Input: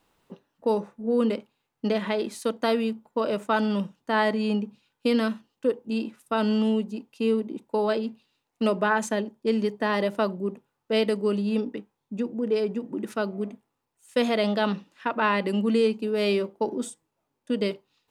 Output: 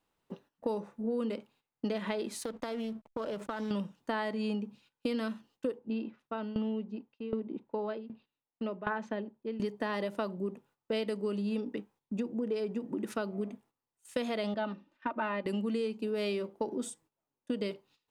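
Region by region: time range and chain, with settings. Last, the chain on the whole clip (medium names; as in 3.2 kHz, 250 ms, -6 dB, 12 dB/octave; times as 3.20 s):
2.40–3.71 s: compression 10:1, threshold -31 dBFS + hysteresis with a dead band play -48 dBFS + loudspeaker Doppler distortion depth 0.16 ms
5.79–9.60 s: tremolo saw down 1.3 Hz, depth 90% + distance through air 270 m
14.54–15.46 s: tape spacing loss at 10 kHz 23 dB + comb 3.3 ms, depth 56% + upward expansion, over -35 dBFS
whole clip: gate -57 dBFS, range -12 dB; compression 5:1, threshold -31 dBFS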